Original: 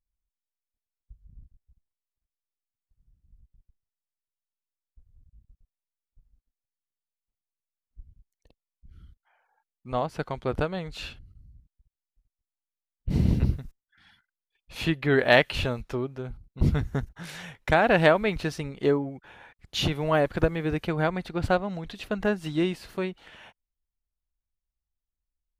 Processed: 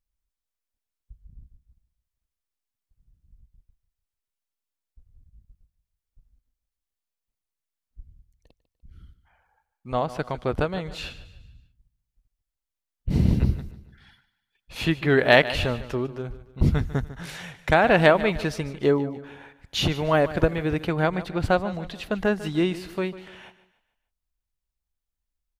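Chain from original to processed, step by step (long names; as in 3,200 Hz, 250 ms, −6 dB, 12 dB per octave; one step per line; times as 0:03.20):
repeating echo 148 ms, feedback 41%, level −15.5 dB
level +2.5 dB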